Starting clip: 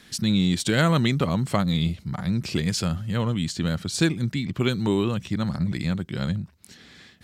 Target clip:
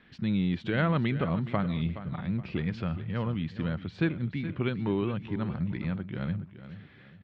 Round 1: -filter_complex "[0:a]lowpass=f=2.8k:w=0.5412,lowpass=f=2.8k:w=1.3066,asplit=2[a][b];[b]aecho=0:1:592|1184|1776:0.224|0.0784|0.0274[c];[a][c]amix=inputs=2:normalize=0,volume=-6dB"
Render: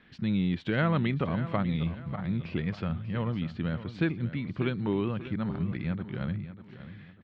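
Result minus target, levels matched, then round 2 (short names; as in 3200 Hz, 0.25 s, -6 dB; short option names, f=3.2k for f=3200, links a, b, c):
echo 0.171 s late
-filter_complex "[0:a]lowpass=f=2.8k:w=0.5412,lowpass=f=2.8k:w=1.3066,asplit=2[a][b];[b]aecho=0:1:421|842|1263:0.224|0.0784|0.0274[c];[a][c]amix=inputs=2:normalize=0,volume=-6dB"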